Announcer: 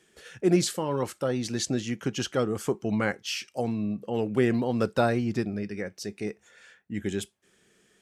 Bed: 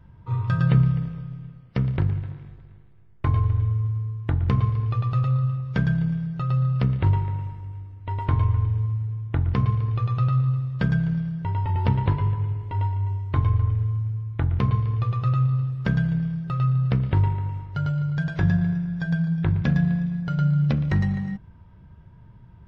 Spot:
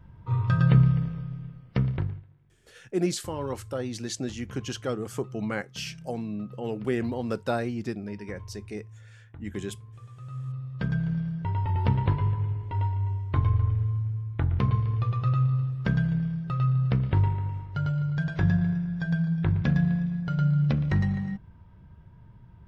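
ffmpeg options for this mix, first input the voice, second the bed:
-filter_complex "[0:a]adelay=2500,volume=-4dB[a];[1:a]volume=19dB,afade=t=out:st=1.75:d=0.5:silence=0.0841395,afade=t=in:st=10.22:d=1.06:silence=0.105925[b];[a][b]amix=inputs=2:normalize=0"

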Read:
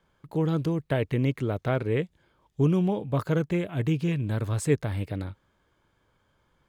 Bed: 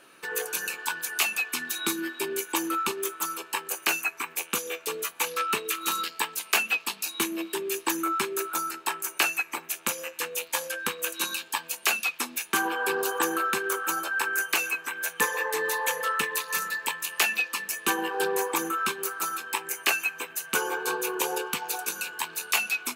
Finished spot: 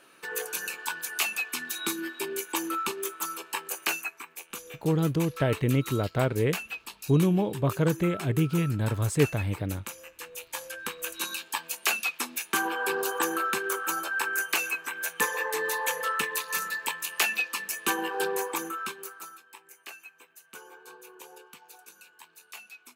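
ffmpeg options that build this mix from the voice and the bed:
-filter_complex "[0:a]adelay=4500,volume=0.5dB[a];[1:a]volume=7dB,afade=t=out:st=3.85:d=0.41:silence=0.375837,afade=t=in:st=10.19:d=1.49:silence=0.334965,afade=t=out:st=18.17:d=1.27:silence=0.11885[b];[a][b]amix=inputs=2:normalize=0"

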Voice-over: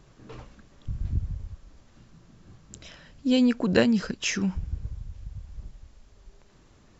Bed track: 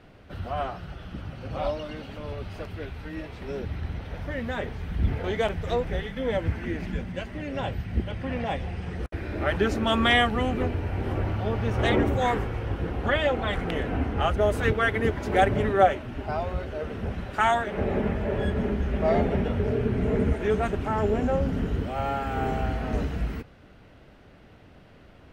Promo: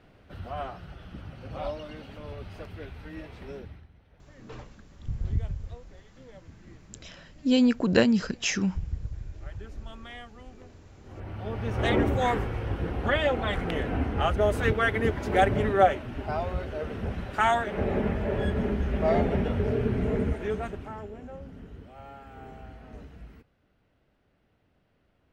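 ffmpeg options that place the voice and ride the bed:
-filter_complex "[0:a]adelay=4200,volume=0dB[a];[1:a]volume=17.5dB,afade=t=out:st=3.42:d=0.45:silence=0.11885,afade=t=in:st=11.03:d=0.97:silence=0.0749894,afade=t=out:st=19.9:d=1.19:silence=0.149624[b];[a][b]amix=inputs=2:normalize=0"

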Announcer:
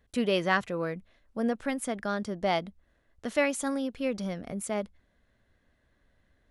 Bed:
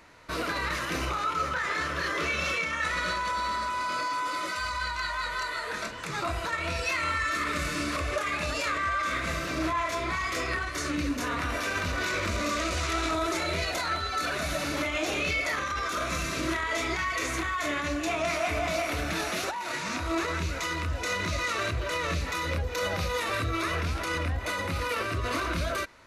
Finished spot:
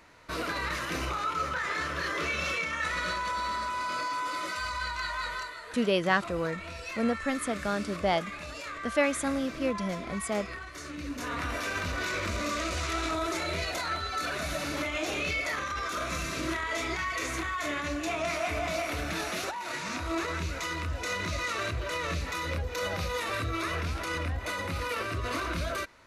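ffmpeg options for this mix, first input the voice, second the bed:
-filter_complex "[0:a]adelay=5600,volume=0.5dB[a];[1:a]volume=5.5dB,afade=t=out:st=5.3:d=0.25:silence=0.398107,afade=t=in:st=10.97:d=0.43:silence=0.421697[b];[a][b]amix=inputs=2:normalize=0"

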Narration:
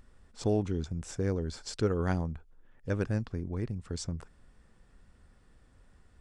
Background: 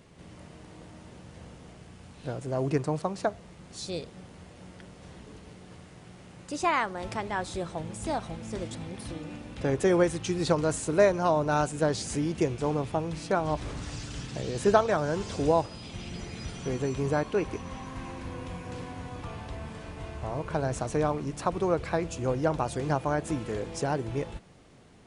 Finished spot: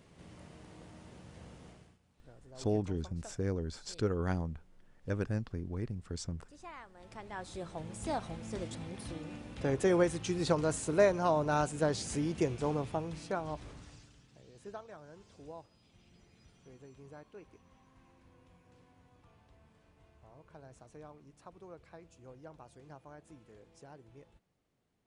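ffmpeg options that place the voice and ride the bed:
-filter_complex "[0:a]adelay=2200,volume=-3.5dB[a];[1:a]volume=13.5dB,afade=t=out:st=1.67:d=0.32:silence=0.125893,afade=t=in:st=6.92:d=1.21:silence=0.11885,afade=t=out:st=12.66:d=1.51:silence=0.1[b];[a][b]amix=inputs=2:normalize=0"

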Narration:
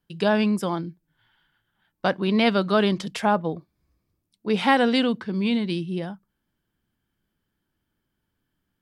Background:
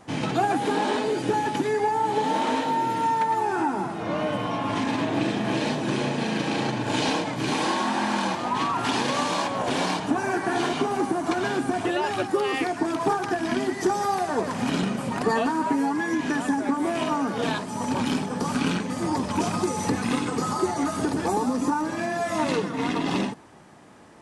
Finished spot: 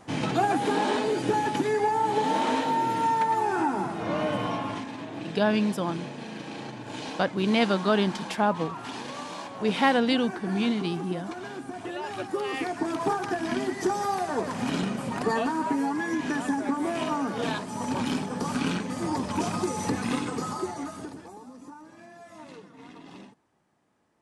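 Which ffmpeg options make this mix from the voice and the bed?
-filter_complex "[0:a]adelay=5150,volume=-3dB[a];[1:a]volume=8dB,afade=t=out:st=4.48:d=0.39:silence=0.281838,afade=t=in:st=11.72:d=1.21:silence=0.354813,afade=t=out:st=20.15:d=1.14:silence=0.125893[b];[a][b]amix=inputs=2:normalize=0"

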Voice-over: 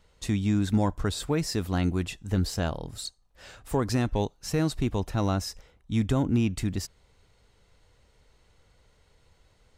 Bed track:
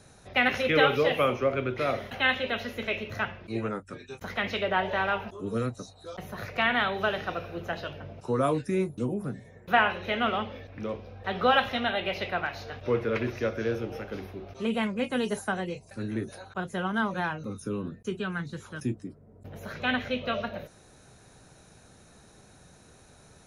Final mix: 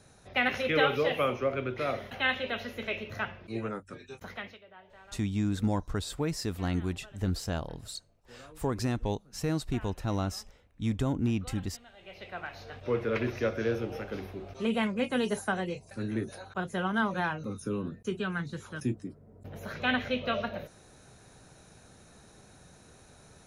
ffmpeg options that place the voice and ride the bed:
-filter_complex "[0:a]adelay=4900,volume=-4.5dB[a];[1:a]volume=23dB,afade=t=out:st=4.14:d=0.45:silence=0.0668344,afade=t=in:st=11.96:d=1.33:silence=0.0473151[b];[a][b]amix=inputs=2:normalize=0"

